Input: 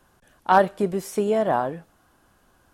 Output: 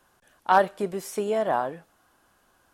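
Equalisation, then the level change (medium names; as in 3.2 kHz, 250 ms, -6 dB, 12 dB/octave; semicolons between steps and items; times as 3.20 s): bass shelf 310 Hz -9 dB; -1.0 dB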